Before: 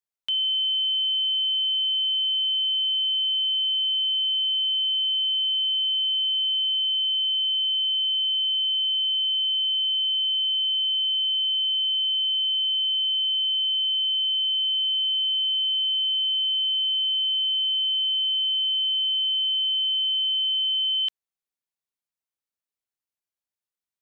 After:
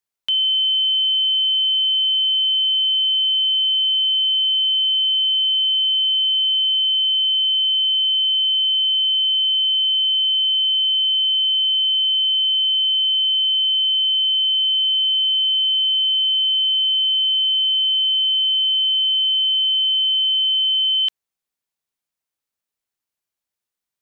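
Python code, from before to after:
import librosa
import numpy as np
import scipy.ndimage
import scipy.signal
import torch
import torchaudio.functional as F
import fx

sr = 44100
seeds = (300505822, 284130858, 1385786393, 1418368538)

y = x * 10.0 ** (6.0 / 20.0)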